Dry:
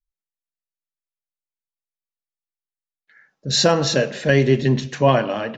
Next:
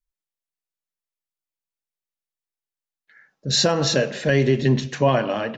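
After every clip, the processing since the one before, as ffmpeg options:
ffmpeg -i in.wav -af "alimiter=limit=-8dB:level=0:latency=1:release=97" out.wav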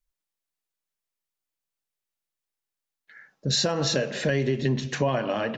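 ffmpeg -i in.wav -af "acompressor=threshold=-27dB:ratio=3,volume=3dB" out.wav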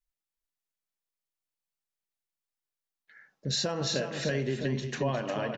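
ffmpeg -i in.wav -af "aecho=1:1:356:0.422,volume=-6dB" out.wav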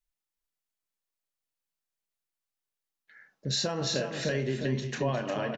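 ffmpeg -i in.wav -filter_complex "[0:a]asplit=2[link_01][link_02];[link_02]adelay=31,volume=-11.5dB[link_03];[link_01][link_03]amix=inputs=2:normalize=0" out.wav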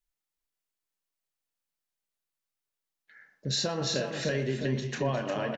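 ffmpeg -i in.wav -filter_complex "[0:a]asplit=2[link_01][link_02];[link_02]adelay=120,highpass=300,lowpass=3400,asoftclip=type=hard:threshold=-25.5dB,volume=-14dB[link_03];[link_01][link_03]amix=inputs=2:normalize=0" out.wav

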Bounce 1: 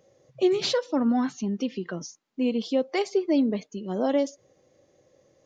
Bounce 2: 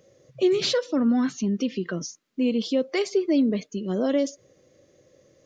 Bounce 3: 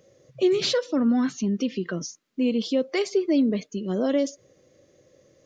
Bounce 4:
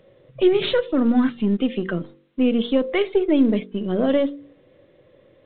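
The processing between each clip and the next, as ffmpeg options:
ffmpeg -i in.wav -filter_complex "[0:a]equalizer=frequency=840:width_type=o:width=0.5:gain=-11,asplit=2[link_01][link_02];[link_02]alimiter=level_in=0.5dB:limit=-24dB:level=0:latency=1:release=31,volume=-0.5dB,volume=-0.5dB[link_03];[link_01][link_03]amix=inputs=2:normalize=0,volume=-1dB" out.wav
ffmpeg -i in.wav -af anull out.wav
ffmpeg -i in.wav -af "aeval=exprs='if(lt(val(0),0),0.708*val(0),val(0))':channel_layout=same,bandreject=frequency=47.49:width_type=h:width=4,bandreject=frequency=94.98:width_type=h:width=4,bandreject=frequency=142.47:width_type=h:width=4,bandreject=frequency=189.96:width_type=h:width=4,bandreject=frequency=237.45:width_type=h:width=4,bandreject=frequency=284.94:width_type=h:width=4,bandreject=frequency=332.43:width_type=h:width=4,bandreject=frequency=379.92:width_type=h:width=4,bandreject=frequency=427.41:width_type=h:width=4,bandreject=frequency=474.9:width_type=h:width=4,bandreject=frequency=522.39:width_type=h:width=4,volume=6dB" -ar 8000 -c:a pcm_alaw out.wav

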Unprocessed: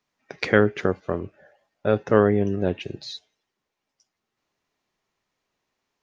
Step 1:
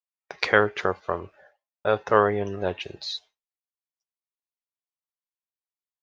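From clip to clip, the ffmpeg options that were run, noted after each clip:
ffmpeg -i in.wav -af "agate=range=-33dB:threshold=-48dB:ratio=3:detection=peak,equalizer=frequency=125:width_type=o:width=1:gain=-7,equalizer=frequency=250:width_type=o:width=1:gain=-10,equalizer=frequency=1000:width_type=o:width=1:gain=8,equalizer=frequency=4000:width_type=o:width=1:gain=5,volume=-1dB" out.wav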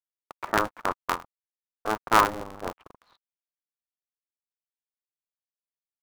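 ffmpeg -i in.wav -af "aeval=exprs='sgn(val(0))*max(abs(val(0))-0.0168,0)':channel_layout=same,lowpass=frequency=1100:width_type=q:width=6.1,aeval=exprs='val(0)*sgn(sin(2*PI*110*n/s))':channel_layout=same,volume=-8.5dB" out.wav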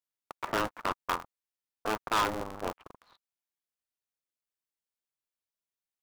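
ffmpeg -i in.wav -af "volume=23dB,asoftclip=hard,volume=-23dB" out.wav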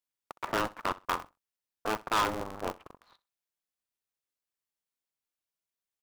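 ffmpeg -i in.wav -af "aecho=1:1:64|128:0.1|0.02" out.wav

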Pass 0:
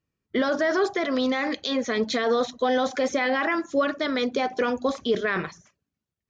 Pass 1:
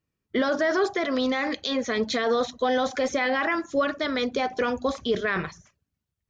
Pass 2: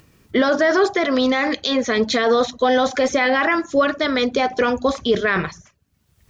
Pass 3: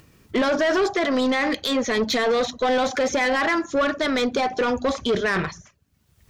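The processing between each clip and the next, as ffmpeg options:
ffmpeg -i in.wav -af "asubboost=boost=3:cutoff=130" out.wav
ffmpeg -i in.wav -af "acompressor=mode=upward:threshold=-43dB:ratio=2.5,volume=7dB" out.wav
ffmpeg -i in.wav -af "asoftclip=type=tanh:threshold=-16dB" out.wav

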